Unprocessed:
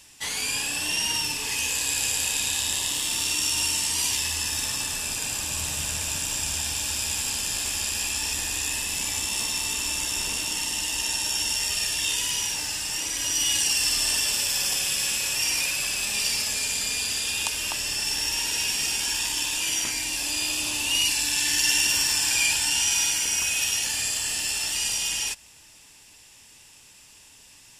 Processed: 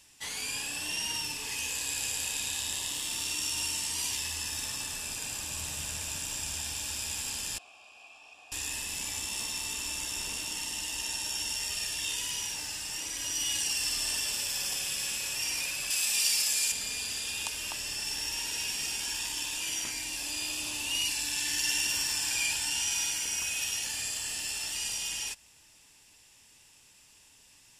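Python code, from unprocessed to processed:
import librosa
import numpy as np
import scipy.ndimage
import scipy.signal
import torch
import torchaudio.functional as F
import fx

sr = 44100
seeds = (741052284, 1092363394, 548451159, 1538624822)

y = fx.vowel_filter(x, sr, vowel='a', at=(7.58, 8.52))
y = fx.tilt_eq(y, sr, slope=2.5, at=(15.9, 16.72))
y = y * 10.0 ** (-7.5 / 20.0)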